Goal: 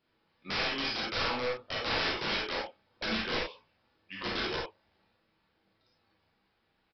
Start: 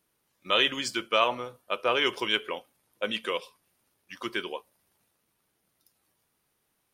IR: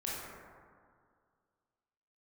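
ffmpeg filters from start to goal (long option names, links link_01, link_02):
-filter_complex "[0:a]acompressor=threshold=-27dB:ratio=6,flanger=delay=7.9:depth=9.6:regen=-36:speed=0.68:shape=sinusoidal,aresample=11025,aeval=exprs='(mod(39.8*val(0)+1,2)-1)/39.8':channel_layout=same,aresample=44100[link_01];[1:a]atrim=start_sample=2205,atrim=end_sample=4410[link_02];[link_01][link_02]afir=irnorm=-1:irlink=0,volume=7dB"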